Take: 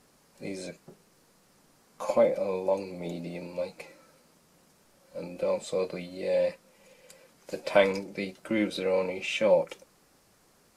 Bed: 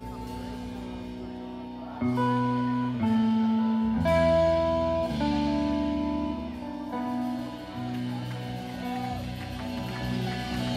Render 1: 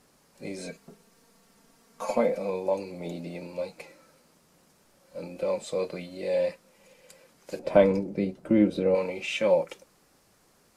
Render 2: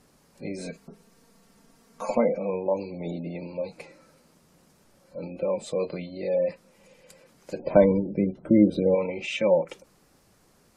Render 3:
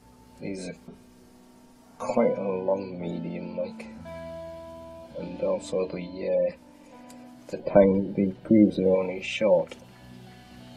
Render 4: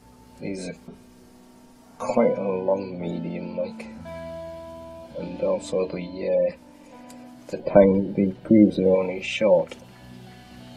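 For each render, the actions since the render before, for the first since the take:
0.58–2.50 s: comb 4.4 ms; 7.59–8.95 s: tilt shelf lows +9.5 dB, about 820 Hz
spectral gate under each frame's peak -30 dB strong; bass shelf 300 Hz +6 dB
add bed -17 dB
trim +3 dB

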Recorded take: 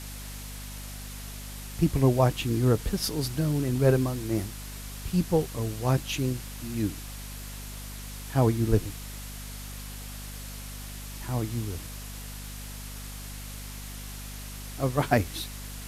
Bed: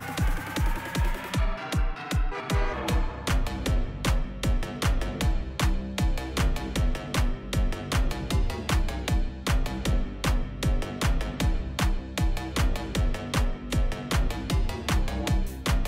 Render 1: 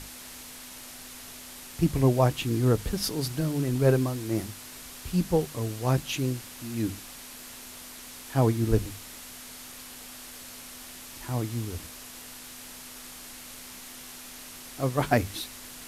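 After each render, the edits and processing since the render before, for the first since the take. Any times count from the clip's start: hum notches 50/100/150/200 Hz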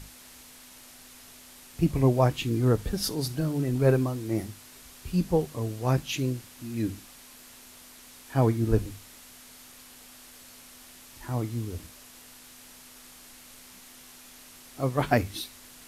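noise print and reduce 6 dB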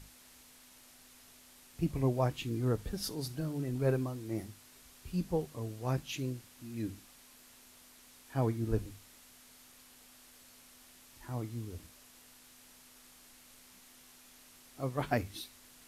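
trim -8.5 dB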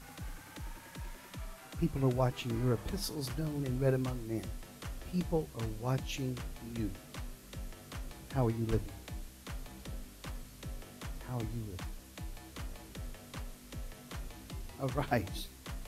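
add bed -18.5 dB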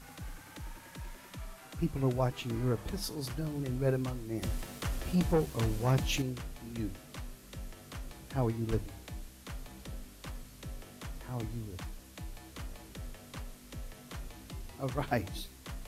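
4.42–6.22 s: waveshaping leveller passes 2

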